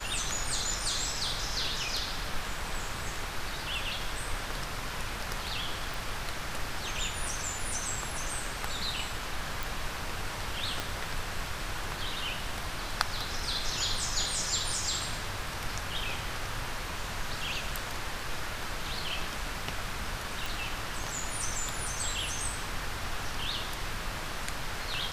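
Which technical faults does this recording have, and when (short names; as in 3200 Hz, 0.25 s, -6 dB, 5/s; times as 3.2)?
5.94 pop
9.63 pop
10.8 pop
20.46 pop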